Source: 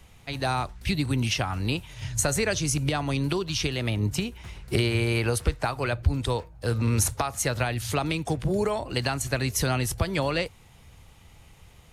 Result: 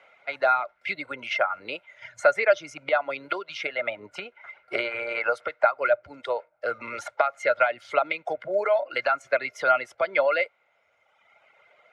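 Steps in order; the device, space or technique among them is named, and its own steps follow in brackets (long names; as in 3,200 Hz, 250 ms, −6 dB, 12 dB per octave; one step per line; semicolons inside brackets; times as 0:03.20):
reverb reduction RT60 1.5 s
tin-can telephone (band-pass filter 660–2,400 Hz; hollow resonant body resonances 600/1,400/2,100 Hz, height 17 dB, ringing for 30 ms)
0:05.66–0:06.74: dynamic equaliser 3,300 Hz, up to −5 dB, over −36 dBFS, Q 0.73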